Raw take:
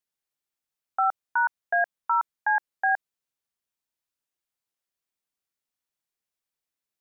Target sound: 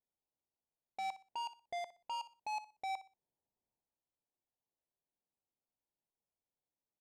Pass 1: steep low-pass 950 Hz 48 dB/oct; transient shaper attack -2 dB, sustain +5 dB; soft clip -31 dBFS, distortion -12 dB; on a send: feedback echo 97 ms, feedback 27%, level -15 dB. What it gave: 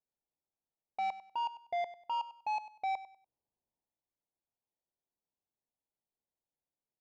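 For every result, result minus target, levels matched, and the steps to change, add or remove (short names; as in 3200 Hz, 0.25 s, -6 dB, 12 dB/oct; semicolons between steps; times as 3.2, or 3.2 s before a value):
echo 36 ms late; soft clip: distortion -4 dB
change: feedback echo 61 ms, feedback 27%, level -15 dB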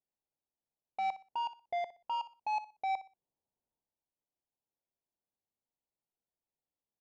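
soft clip: distortion -4 dB
change: soft clip -38 dBFS, distortion -8 dB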